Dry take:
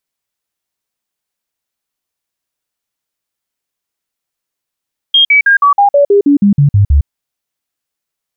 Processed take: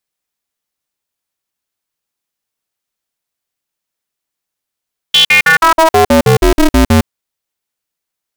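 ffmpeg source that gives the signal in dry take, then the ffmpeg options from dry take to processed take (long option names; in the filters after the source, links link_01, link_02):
-f lavfi -i "aevalsrc='0.631*clip(min(mod(t,0.16),0.11-mod(t,0.16))/0.005,0,1)*sin(2*PI*3230*pow(2,-floor(t/0.16)/2)*mod(t,0.16))':duration=1.92:sample_rate=44100"
-af "aeval=exprs='val(0)*sgn(sin(2*PI*160*n/s))':channel_layout=same"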